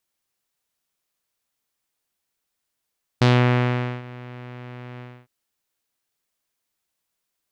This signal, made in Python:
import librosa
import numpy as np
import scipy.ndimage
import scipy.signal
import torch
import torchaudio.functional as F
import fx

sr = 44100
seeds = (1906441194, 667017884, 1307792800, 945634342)

y = fx.sub_voice(sr, note=47, wave='saw', cutoff_hz=2400.0, q=1.5, env_oct=1.0, env_s=0.21, attack_ms=8.4, decay_s=0.8, sustain_db=-23.0, release_s=0.27, note_s=1.79, slope=12)